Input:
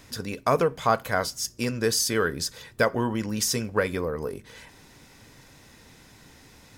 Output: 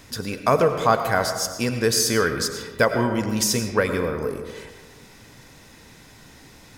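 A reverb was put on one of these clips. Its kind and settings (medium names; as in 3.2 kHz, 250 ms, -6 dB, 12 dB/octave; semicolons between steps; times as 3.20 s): algorithmic reverb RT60 1.4 s, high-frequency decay 0.5×, pre-delay 60 ms, DRR 7 dB; trim +3.5 dB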